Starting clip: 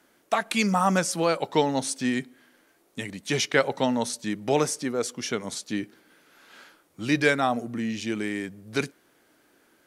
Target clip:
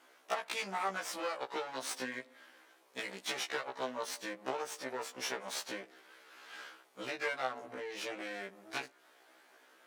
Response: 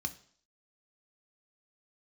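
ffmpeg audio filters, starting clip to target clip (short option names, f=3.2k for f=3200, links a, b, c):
-af "aeval=exprs='max(val(0),0)':c=same,highshelf=f=6k:g=-10.5,acompressor=threshold=-35dB:ratio=10,highpass=530,afftfilt=real='re*1.73*eq(mod(b,3),0)':imag='im*1.73*eq(mod(b,3),0)':win_size=2048:overlap=0.75,volume=9.5dB"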